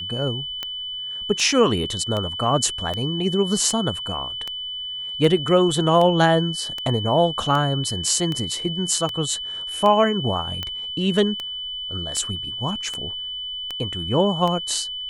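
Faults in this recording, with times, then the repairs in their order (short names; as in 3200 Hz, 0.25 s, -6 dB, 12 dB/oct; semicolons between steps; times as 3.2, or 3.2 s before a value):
tick 78 rpm -13 dBFS
tone 3000 Hz -28 dBFS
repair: de-click; notch 3000 Hz, Q 30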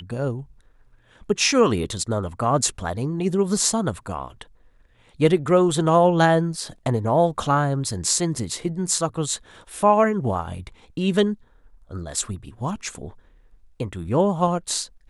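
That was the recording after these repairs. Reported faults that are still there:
none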